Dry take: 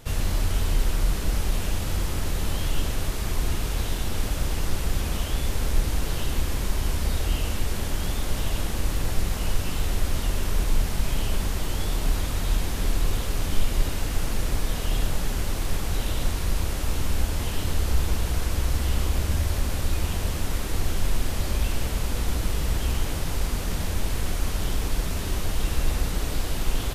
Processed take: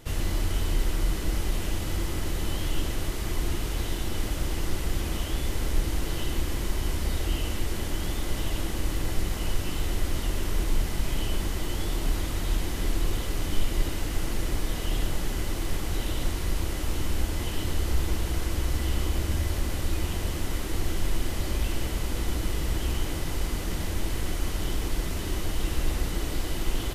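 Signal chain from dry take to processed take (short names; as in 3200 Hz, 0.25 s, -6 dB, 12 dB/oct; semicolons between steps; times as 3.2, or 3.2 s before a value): small resonant body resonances 330/2000/3000 Hz, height 8 dB; gain -3 dB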